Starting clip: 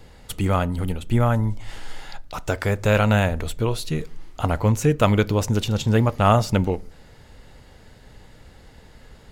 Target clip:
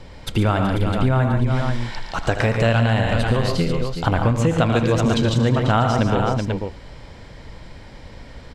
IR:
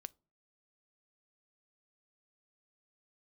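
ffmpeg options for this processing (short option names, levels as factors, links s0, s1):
-filter_complex "[0:a]asplit=2[s0][s1];[s1]aecho=0:1:86|125|153|207|410|535:0.237|0.316|0.376|0.126|0.282|0.299[s2];[s0][s2]amix=inputs=2:normalize=0,acompressor=threshold=0.1:ratio=6,lowpass=5300,asetrate=48069,aresample=44100,volume=2"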